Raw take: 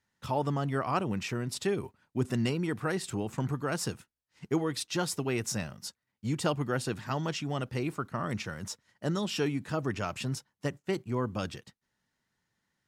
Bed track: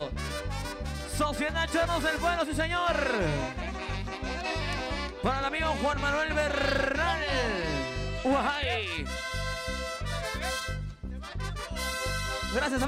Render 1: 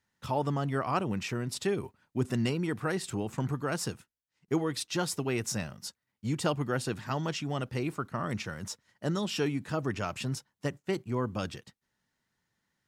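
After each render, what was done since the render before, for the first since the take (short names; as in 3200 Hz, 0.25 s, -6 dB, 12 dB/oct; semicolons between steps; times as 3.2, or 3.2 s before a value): 3.65–4.48 fade out equal-power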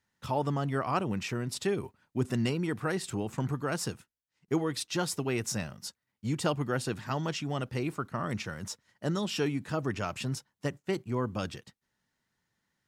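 nothing audible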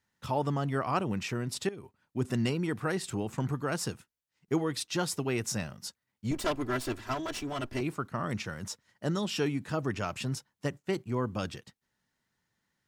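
1.69–2.32 fade in, from -16 dB; 6.31–7.81 minimum comb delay 3 ms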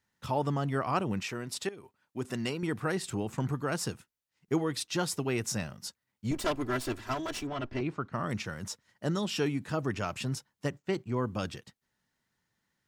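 1.2–2.63 low shelf 220 Hz -10.5 dB; 7.47–8.13 air absorption 150 m; 10.7–11.18 bell 11000 Hz -9.5 dB 0.71 oct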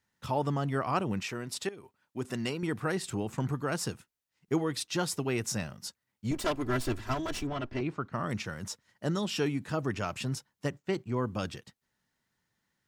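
6.66–7.58 low shelf 140 Hz +9.5 dB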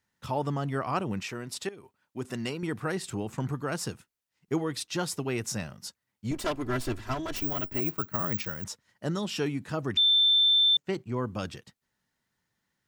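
7.36–8.64 careless resampling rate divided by 2×, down filtered, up zero stuff; 9.97–10.77 bleep 3550 Hz -18.5 dBFS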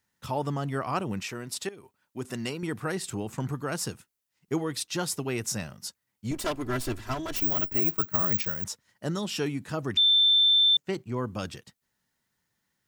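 high shelf 6800 Hz +6.5 dB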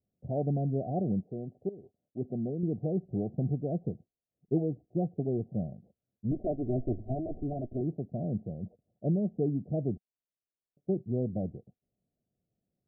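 Chebyshev low-pass 740 Hz, order 8; dynamic EQ 180 Hz, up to +5 dB, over -46 dBFS, Q 2.1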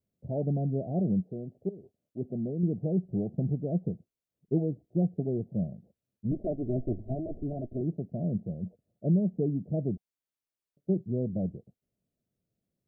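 notch 740 Hz, Q 12; dynamic EQ 180 Hz, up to +6 dB, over -46 dBFS, Q 4.8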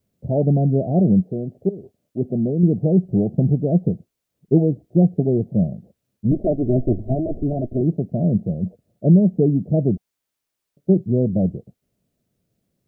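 gain +12 dB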